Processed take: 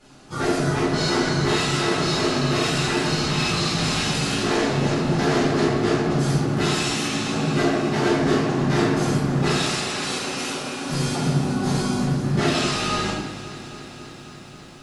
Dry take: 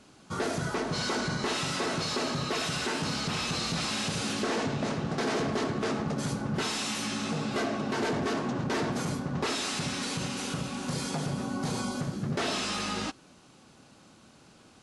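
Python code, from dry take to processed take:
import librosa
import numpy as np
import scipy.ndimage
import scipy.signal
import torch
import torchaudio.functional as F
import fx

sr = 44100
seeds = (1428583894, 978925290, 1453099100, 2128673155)

y = fx.highpass(x, sr, hz=310.0, slope=24, at=(9.5, 10.84))
y = fx.room_shoebox(y, sr, seeds[0], volume_m3=210.0, walls='mixed', distance_m=4.0)
y = fx.echo_crushed(y, sr, ms=271, feedback_pct=80, bits=9, wet_db=-15.0)
y = F.gain(torch.from_numpy(y), -4.0).numpy()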